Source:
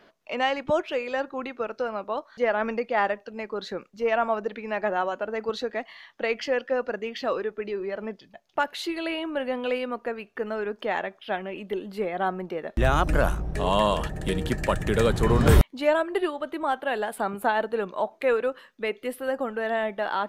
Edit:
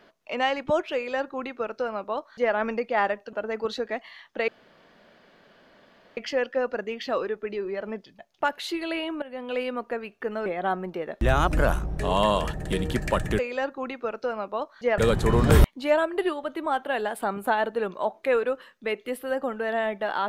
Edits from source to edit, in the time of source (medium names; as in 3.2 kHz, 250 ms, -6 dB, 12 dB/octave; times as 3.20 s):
0.95–2.54 s: copy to 14.95 s
3.33–5.17 s: delete
6.32 s: insert room tone 1.69 s
9.37–9.81 s: fade in, from -16.5 dB
10.61–12.02 s: delete